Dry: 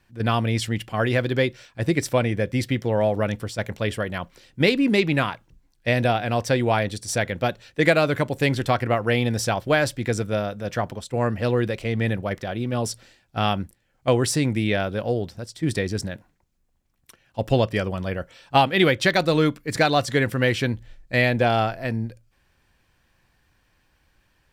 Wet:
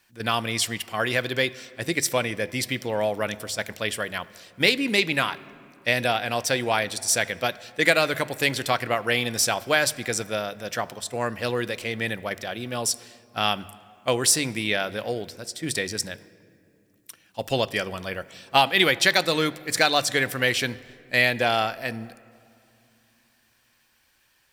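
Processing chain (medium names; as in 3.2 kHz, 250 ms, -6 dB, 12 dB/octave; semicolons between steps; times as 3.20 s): tilt EQ +3 dB/octave; de-hum 49.24 Hz, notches 3; on a send: reverberation RT60 2.5 s, pre-delay 3 ms, DRR 18 dB; on the sum: trim -1 dB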